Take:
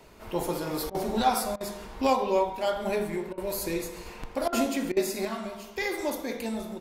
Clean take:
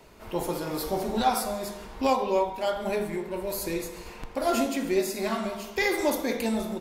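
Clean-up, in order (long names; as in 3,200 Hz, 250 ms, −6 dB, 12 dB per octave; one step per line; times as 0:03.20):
repair the gap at 0:00.90/0:01.56/0:03.33/0:04.48/0:04.92, 45 ms
level 0 dB, from 0:05.25 +5 dB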